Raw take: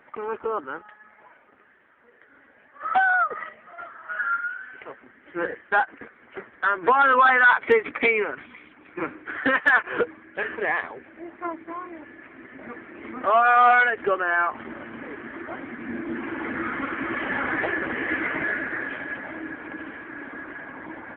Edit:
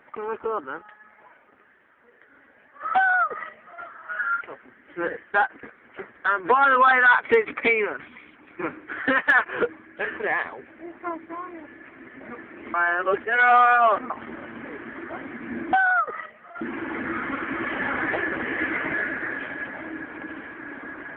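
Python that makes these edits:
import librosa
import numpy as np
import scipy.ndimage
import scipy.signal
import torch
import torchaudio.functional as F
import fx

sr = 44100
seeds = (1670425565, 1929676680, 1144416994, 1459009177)

y = fx.edit(x, sr, fx.duplicate(start_s=2.96, length_s=0.88, to_s=16.11),
    fx.cut(start_s=4.41, length_s=0.38),
    fx.reverse_span(start_s=13.12, length_s=1.36), tone=tone)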